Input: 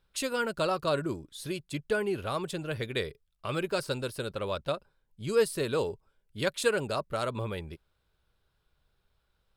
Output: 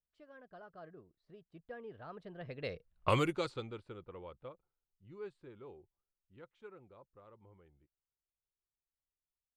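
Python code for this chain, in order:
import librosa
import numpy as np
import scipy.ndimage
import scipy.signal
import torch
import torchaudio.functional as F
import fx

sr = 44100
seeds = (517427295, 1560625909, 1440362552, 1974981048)

y = fx.doppler_pass(x, sr, speed_mps=38, closest_m=2.2, pass_at_s=3.04)
y = fx.env_lowpass(y, sr, base_hz=1400.0, full_db=-35.5)
y = y * 10.0 ** (9.5 / 20.0)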